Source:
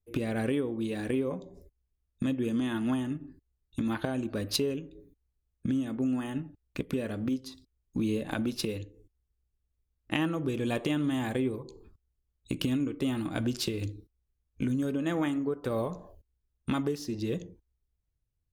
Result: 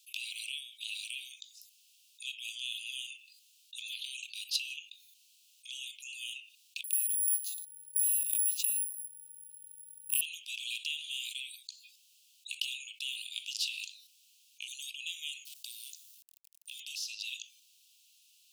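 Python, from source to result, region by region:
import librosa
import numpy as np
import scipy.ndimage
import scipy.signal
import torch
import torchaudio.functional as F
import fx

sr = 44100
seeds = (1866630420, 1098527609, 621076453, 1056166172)

y = fx.chain(x, sr, fx.bass_treble(bass_db=5, treble_db=-14),
    fx.resample_bad(factor=4, down='none', up='zero_stuff'), at=(6.84, 10.21))
y = fx.chain(y, sr, fx.law_mismatch(coded='A'),
    fx.differentiator(),
    fx.over_compress(threshold_db=-55.0, ratio=-1.0), at=(15.45, 16.8))
y = scipy.signal.sosfilt(scipy.signal.butter(16, 2600.0, 'highpass', fs=sr, output='sos'), y)
y = fx.high_shelf(y, sr, hz=8000.0, db=-9.5)
y = fx.env_flatten(y, sr, amount_pct=50)
y = y * 10.0 ** (-1.0 / 20.0)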